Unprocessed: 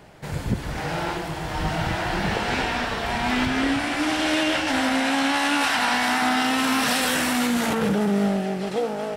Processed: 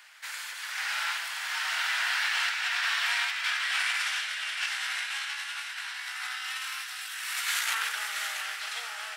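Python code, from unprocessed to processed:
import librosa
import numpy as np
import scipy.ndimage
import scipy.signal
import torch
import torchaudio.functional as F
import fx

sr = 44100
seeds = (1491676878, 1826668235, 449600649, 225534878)

y = scipy.signal.sosfilt(scipy.signal.butter(4, 1400.0, 'highpass', fs=sr, output='sos'), x)
y = fx.over_compress(y, sr, threshold_db=-31.0, ratio=-0.5)
y = y + 10.0 ** (-8.5 / 20.0) * np.pad(y, (int(676 * sr / 1000.0), 0))[:len(y)]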